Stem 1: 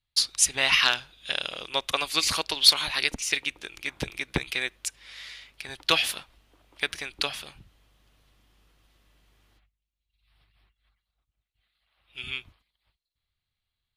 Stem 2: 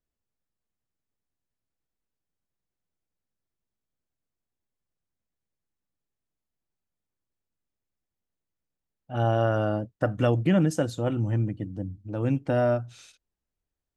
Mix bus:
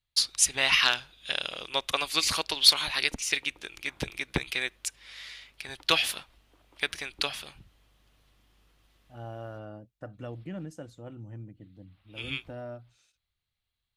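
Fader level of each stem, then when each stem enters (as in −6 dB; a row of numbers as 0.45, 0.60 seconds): −1.5, −17.0 decibels; 0.00, 0.00 seconds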